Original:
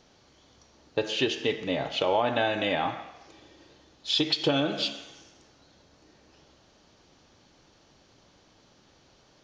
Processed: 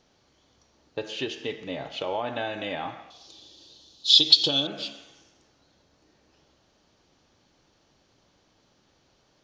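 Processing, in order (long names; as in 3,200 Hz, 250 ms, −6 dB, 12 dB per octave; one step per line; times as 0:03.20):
0:03.10–0:04.67: high shelf with overshoot 2,800 Hz +10.5 dB, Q 3
level −5 dB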